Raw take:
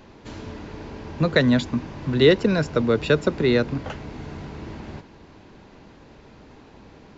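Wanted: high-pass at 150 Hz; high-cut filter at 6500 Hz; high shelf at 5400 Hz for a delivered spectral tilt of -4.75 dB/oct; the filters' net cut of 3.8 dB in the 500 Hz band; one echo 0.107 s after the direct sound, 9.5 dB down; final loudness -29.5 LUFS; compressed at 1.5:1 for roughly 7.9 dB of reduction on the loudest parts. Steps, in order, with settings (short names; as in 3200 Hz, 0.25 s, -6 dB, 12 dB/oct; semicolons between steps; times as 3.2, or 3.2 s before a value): HPF 150 Hz; LPF 6500 Hz; bell 500 Hz -4.5 dB; high shelf 5400 Hz -3.5 dB; compressor 1.5:1, threshold -37 dBFS; echo 0.107 s -9.5 dB; gain +2.5 dB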